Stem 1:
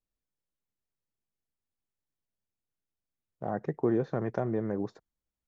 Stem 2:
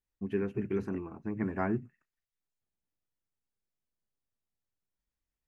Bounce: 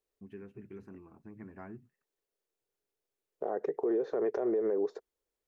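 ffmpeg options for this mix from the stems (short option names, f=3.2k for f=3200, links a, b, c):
-filter_complex "[0:a]highpass=f=420:t=q:w=4.9,volume=2dB[a];[1:a]acompressor=threshold=-53dB:ratio=1.5,volume=-6.5dB[b];[a][b]amix=inputs=2:normalize=0,alimiter=limit=-23.5dB:level=0:latency=1:release=90"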